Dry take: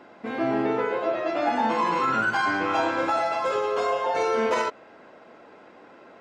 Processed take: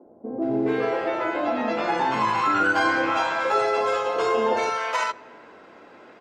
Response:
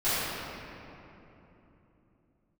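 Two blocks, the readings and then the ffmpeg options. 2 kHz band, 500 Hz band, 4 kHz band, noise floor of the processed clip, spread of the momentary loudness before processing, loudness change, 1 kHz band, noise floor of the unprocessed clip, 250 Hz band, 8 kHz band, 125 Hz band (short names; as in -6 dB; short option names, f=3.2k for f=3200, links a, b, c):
+3.0 dB, +1.0 dB, +3.0 dB, -49 dBFS, 4 LU, +1.5 dB, +1.5 dB, -50 dBFS, +2.0 dB, +3.0 dB, +1.5 dB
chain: -filter_complex "[0:a]acrossover=split=190|650[a][b][c];[a]adelay=60[d];[c]adelay=420[e];[d][b][e]amix=inputs=3:normalize=0,asplit=2[f][g];[1:a]atrim=start_sample=2205,asetrate=61740,aresample=44100[h];[g][h]afir=irnorm=-1:irlink=0,volume=-32.5dB[i];[f][i]amix=inputs=2:normalize=0,volume=3dB"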